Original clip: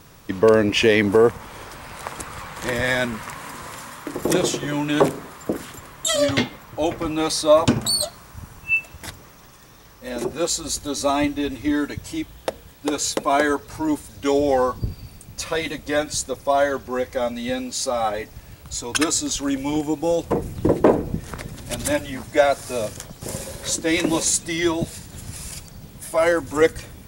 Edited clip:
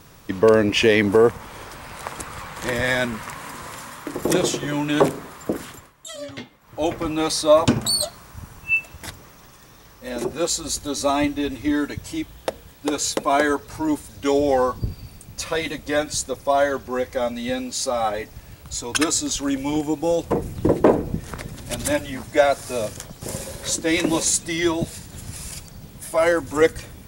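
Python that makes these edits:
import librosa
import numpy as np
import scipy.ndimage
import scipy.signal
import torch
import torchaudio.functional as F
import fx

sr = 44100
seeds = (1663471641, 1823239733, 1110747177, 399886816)

y = fx.edit(x, sr, fx.fade_down_up(start_s=5.68, length_s=1.18, db=-15.0, fade_s=0.25), tone=tone)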